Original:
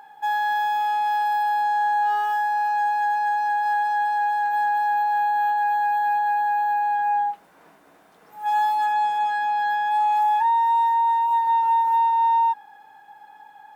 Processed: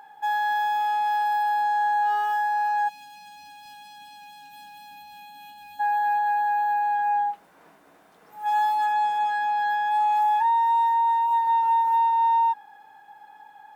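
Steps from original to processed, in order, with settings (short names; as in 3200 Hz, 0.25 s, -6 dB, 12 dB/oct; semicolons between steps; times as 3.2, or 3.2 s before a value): spectral gain 2.88–5.8, 300–2400 Hz -23 dB; gain -1.5 dB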